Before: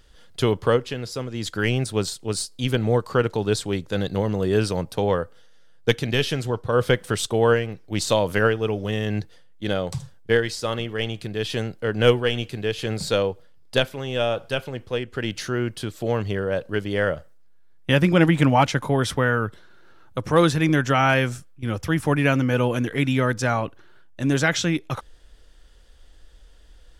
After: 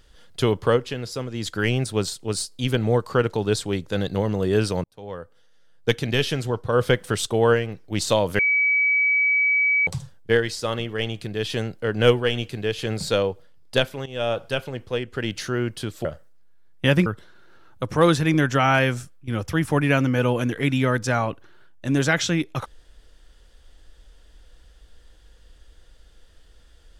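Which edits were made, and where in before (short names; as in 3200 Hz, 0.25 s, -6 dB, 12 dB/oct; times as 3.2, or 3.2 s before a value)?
4.84–6.07 fade in
8.39–9.87 bleep 2280 Hz -16.5 dBFS
14.06–14.31 fade in, from -14.5 dB
16.05–17.1 cut
18.11–19.41 cut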